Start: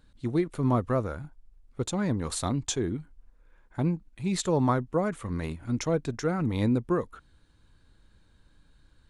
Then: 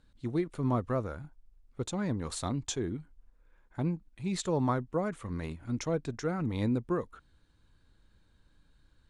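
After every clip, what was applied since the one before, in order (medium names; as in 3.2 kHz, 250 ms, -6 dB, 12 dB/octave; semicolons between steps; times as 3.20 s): low-pass 9.9 kHz 12 dB/octave; trim -4.5 dB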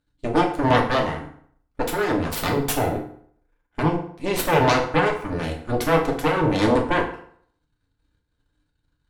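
Chebyshev shaper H 3 -12 dB, 5 -41 dB, 6 -8 dB, 7 -32 dB, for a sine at -19 dBFS; FDN reverb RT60 0.6 s, low-frequency decay 0.95×, high-frequency decay 0.75×, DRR -0.5 dB; trim +7.5 dB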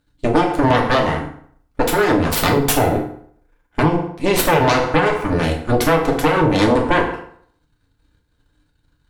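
compression, threshold -20 dBFS, peak gain reduction 8 dB; trim +9 dB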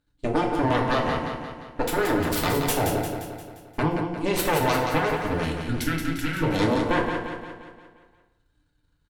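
time-frequency box 5.45–6.43 s, 350–1300 Hz -20 dB; on a send: feedback delay 175 ms, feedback 53%, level -6 dB; on the sum: trim -8.5 dB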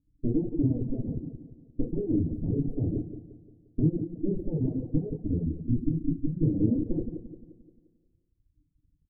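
inverse Chebyshev low-pass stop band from 1.1 kHz, stop band 60 dB; reverb removal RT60 1.3 s; trim +3 dB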